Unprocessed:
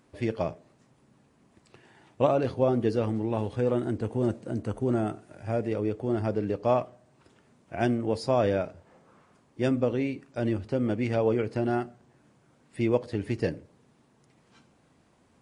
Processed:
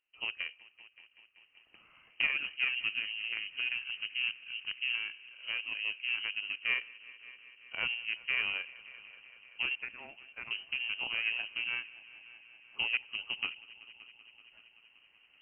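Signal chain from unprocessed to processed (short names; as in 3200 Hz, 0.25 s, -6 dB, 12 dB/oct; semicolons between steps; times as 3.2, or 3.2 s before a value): recorder AGC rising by 5.6 dB/s; gate -57 dBFS, range -10 dB; added harmonics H 5 -26 dB, 7 -19 dB, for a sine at -7.5 dBFS; 9.75–10.51 HPF 710 Hz 12 dB/oct; on a send: multi-head echo 0.191 s, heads all three, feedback 64%, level -24 dB; on the sum: inverted band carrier 3000 Hz; gain -7.5 dB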